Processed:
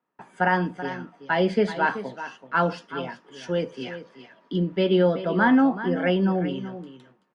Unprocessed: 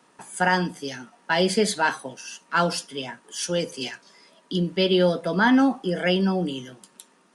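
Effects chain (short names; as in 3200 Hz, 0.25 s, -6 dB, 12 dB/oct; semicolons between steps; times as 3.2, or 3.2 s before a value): LPF 2100 Hz 12 dB/oct; gate with hold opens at -49 dBFS; on a send: echo 0.381 s -12.5 dB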